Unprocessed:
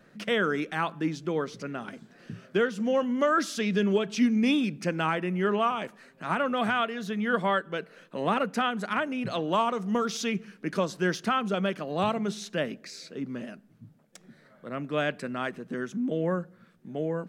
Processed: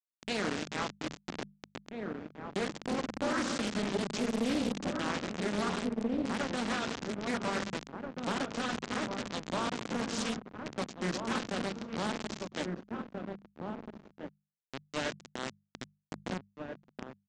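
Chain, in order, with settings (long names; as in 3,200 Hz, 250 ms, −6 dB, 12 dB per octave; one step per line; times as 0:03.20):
spectral tilt +3 dB per octave
on a send at −3 dB: convolution reverb RT60 2.9 s, pre-delay 3 ms
on the sum: bit reduction 4 bits
parametric band 220 Hz +14 dB 2.1 octaves
mains-hum notches 50/100/150/200 Hz
slap from a distant wall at 280 metres, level −8 dB
brickwall limiter −14 dBFS, peak gain reduction 9.5 dB
downsampling to 16,000 Hz
highs frequency-modulated by the lows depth 0.64 ms
level −8.5 dB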